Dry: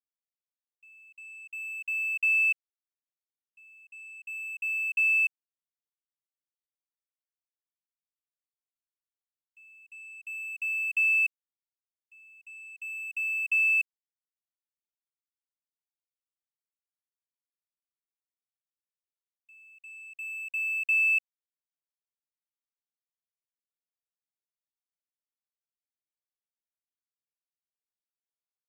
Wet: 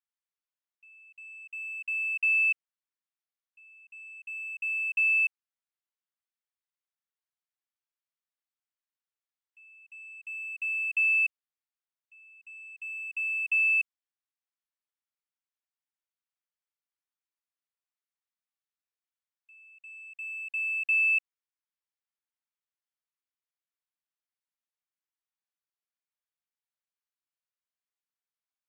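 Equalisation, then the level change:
high-pass filter 1,100 Hz 12 dB per octave
low-pass filter 1,700 Hz 6 dB per octave
+5.0 dB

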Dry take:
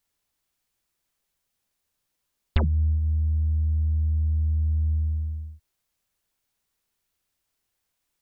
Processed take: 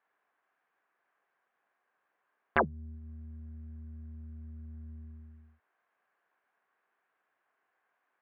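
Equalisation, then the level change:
loudspeaker in its box 360–2,200 Hz, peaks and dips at 420 Hz +3 dB, 730 Hz +7 dB, 1,100 Hz +7 dB, 1,600 Hz +9 dB
+4.0 dB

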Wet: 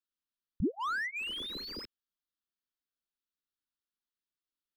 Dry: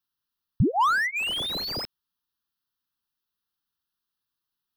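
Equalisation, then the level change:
high-shelf EQ 5,300 Hz −10.5 dB
phaser with its sweep stopped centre 300 Hz, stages 4
−6.5 dB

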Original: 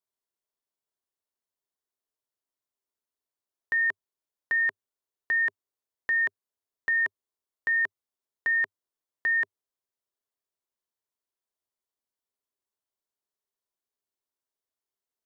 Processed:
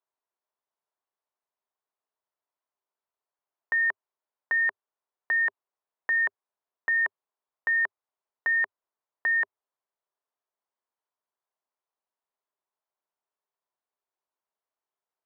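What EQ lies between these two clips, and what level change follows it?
resonant band-pass 890 Hz, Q 1.2
+7.0 dB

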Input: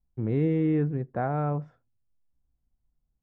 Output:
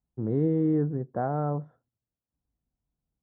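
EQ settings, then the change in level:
moving average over 18 samples
high-pass filter 40 Hz
low-shelf EQ 90 Hz −10.5 dB
+1.5 dB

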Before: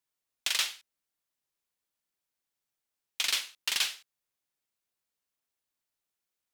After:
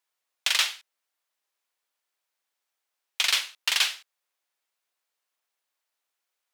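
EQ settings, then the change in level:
high-pass filter 560 Hz 12 dB per octave
high-shelf EQ 4,700 Hz −6.5 dB
+8.0 dB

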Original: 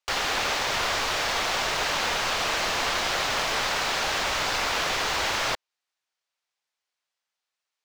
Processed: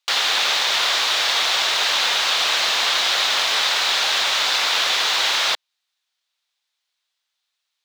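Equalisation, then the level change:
high-pass filter 1,000 Hz 6 dB per octave
parametric band 3,700 Hz +8 dB 0.59 octaves
+5.5 dB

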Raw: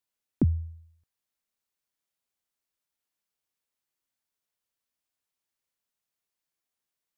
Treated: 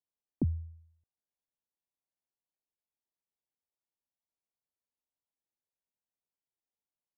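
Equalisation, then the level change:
Butterworth low-pass 1,000 Hz 48 dB per octave
−6.5 dB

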